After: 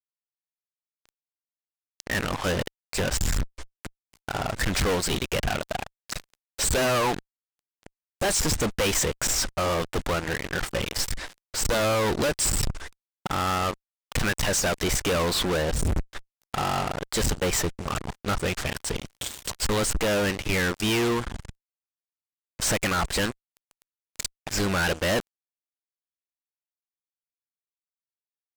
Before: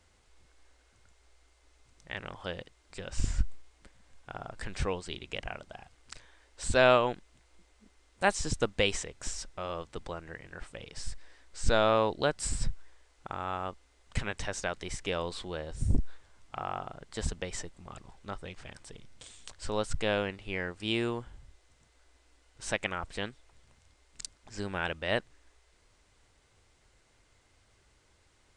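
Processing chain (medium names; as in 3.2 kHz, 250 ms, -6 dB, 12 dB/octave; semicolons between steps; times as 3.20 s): harmonic-percussive split harmonic -6 dB; fuzz box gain 50 dB, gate -52 dBFS; trim -8.5 dB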